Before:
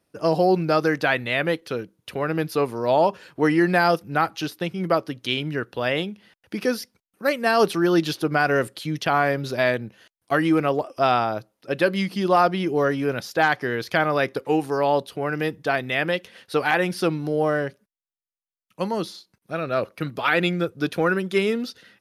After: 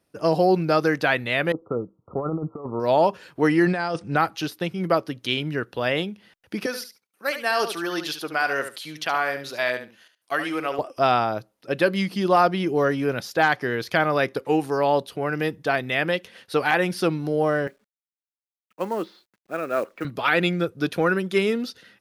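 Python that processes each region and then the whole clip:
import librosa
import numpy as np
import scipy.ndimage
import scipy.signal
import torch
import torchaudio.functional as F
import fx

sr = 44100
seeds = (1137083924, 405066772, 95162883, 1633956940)

y = fx.chain(x, sr, fx.brickwall_lowpass(high_hz=1400.0),
    fx.over_compress(threshold_db=-26.0, ratio=-0.5), at=(1.52, 2.8))
y = fx.chain(y, sr, fx.over_compress(threshold_db=-24.0, ratio=-1.0),
    fx.brickwall_lowpass(high_hz=9500.0), at=(3.66, 4.17))
y = fx.chain(y, sr, fx.highpass(hz=1000.0, slope=6),
    fx.echo_feedback(ms=72, feedback_pct=15, wet_db=-9.5), at=(6.66, 10.79))
y = fx.chain(y, sr, fx.cheby1_bandpass(low_hz=280.0, high_hz=2100.0, order=2),
    fx.quant_companded(bits=6), at=(17.67, 20.05))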